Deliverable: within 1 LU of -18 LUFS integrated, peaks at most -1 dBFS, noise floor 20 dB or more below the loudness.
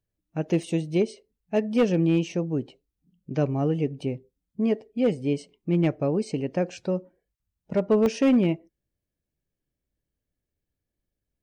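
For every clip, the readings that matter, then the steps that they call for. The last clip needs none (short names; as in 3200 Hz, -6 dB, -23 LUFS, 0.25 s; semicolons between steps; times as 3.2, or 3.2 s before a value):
clipped 0.5%; flat tops at -14.5 dBFS; dropouts 2; longest dropout 1.7 ms; loudness -26.0 LUFS; peak -14.5 dBFS; loudness target -18.0 LUFS
-> clip repair -14.5 dBFS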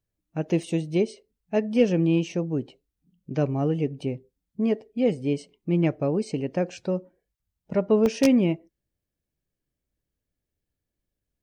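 clipped 0.0%; dropouts 2; longest dropout 1.7 ms
-> interpolate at 0.63/8.06, 1.7 ms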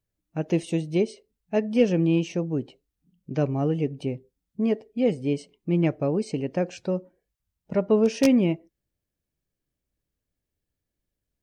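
dropouts 0; loudness -25.5 LUFS; peak -5.5 dBFS; loudness target -18.0 LUFS
-> gain +7.5 dB; limiter -1 dBFS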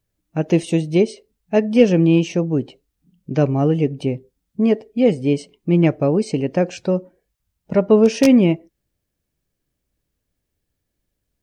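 loudness -18.0 LUFS; peak -1.0 dBFS; noise floor -77 dBFS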